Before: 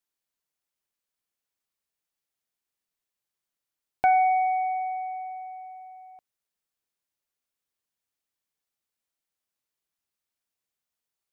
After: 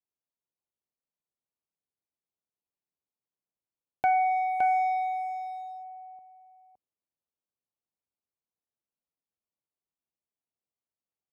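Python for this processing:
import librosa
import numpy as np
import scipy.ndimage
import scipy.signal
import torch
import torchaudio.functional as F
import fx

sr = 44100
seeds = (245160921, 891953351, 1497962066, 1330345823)

y = fx.wiener(x, sr, points=25)
y = scipy.signal.sosfilt(scipy.signal.butter(2, 54.0, 'highpass', fs=sr, output='sos'), y)
y = y + 10.0 ** (-4.5 / 20.0) * np.pad(y, (int(565 * sr / 1000.0), 0))[:len(y)]
y = y * librosa.db_to_amplitude(-3.5)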